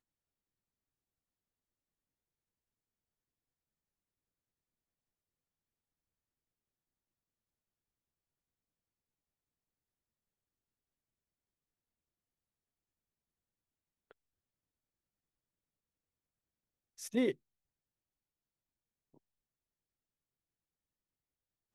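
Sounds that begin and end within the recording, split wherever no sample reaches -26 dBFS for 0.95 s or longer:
17.17–17.29 s

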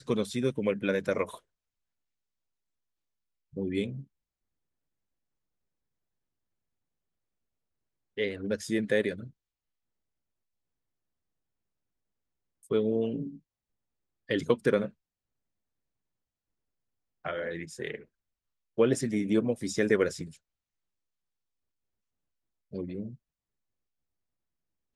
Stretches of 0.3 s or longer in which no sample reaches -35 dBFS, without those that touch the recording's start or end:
1.35–3.57 s
4.00–8.18 s
9.23–12.71 s
13.29–14.30 s
14.87–17.25 s
17.95–18.79 s
20.25–22.74 s

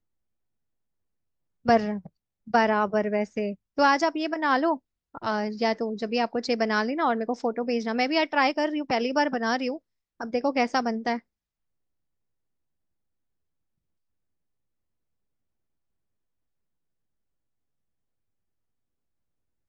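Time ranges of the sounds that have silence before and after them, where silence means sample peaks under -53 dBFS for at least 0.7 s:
1.65–11.21 s

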